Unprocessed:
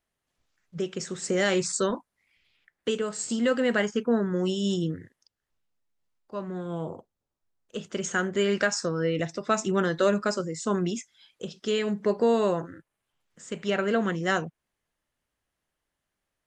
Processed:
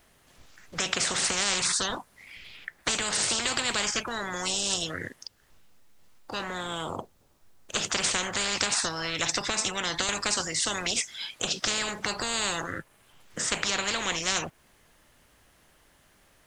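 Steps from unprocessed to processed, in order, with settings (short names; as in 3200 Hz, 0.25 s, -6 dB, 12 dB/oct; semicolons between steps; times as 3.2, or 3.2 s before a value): 9.4–10.09 compressor 2.5:1, threshold -28 dBFS, peak gain reduction 7 dB; spectral compressor 10:1; gain +2 dB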